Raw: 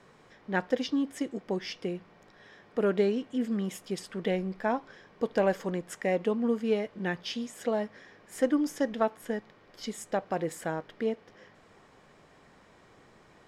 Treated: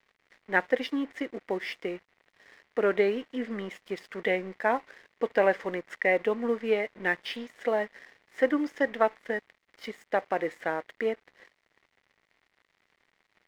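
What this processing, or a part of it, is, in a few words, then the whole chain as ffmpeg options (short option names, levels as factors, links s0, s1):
pocket radio on a weak battery: -af "highpass=340,lowpass=3200,aeval=exprs='sgn(val(0))*max(abs(val(0))-0.00178,0)':c=same,equalizer=f=2000:t=o:w=0.43:g=9.5,volume=1.5"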